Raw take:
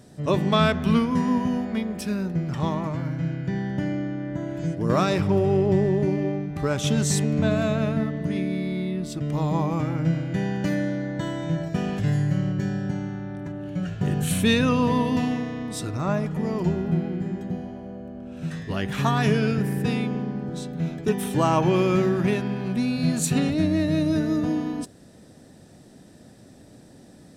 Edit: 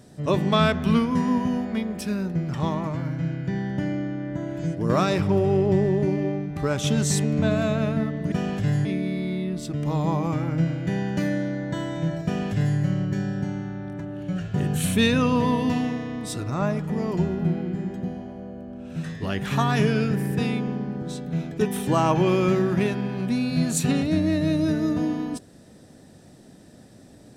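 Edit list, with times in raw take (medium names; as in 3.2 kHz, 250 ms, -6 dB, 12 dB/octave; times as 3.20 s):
11.72–12.25 s: copy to 8.32 s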